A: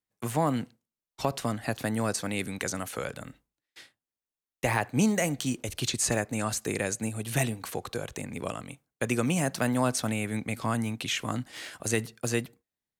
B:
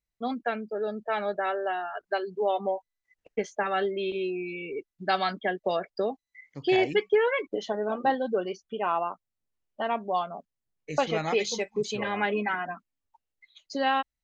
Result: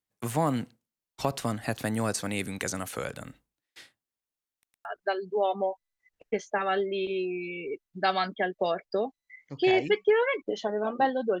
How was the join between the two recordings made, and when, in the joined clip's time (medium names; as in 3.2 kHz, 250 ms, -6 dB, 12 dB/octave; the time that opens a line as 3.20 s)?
A
4.52 s: stutter in place 0.11 s, 3 plays
4.85 s: go over to B from 1.90 s